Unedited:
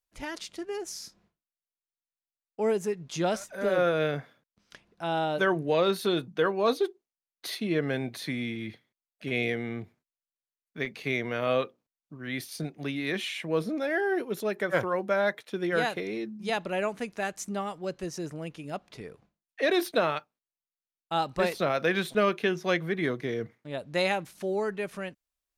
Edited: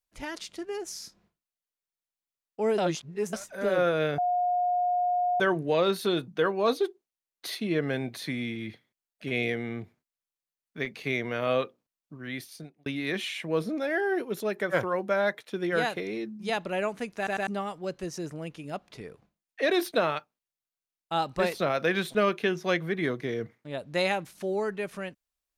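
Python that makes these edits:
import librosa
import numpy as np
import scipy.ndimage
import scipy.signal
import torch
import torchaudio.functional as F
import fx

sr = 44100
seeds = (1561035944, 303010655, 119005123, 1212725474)

y = fx.edit(x, sr, fx.reverse_span(start_s=2.78, length_s=0.55),
    fx.bleep(start_s=4.18, length_s=1.22, hz=716.0, db=-23.0),
    fx.fade_out_span(start_s=12.18, length_s=0.68),
    fx.stutter_over(start_s=17.17, slice_s=0.1, count=3), tone=tone)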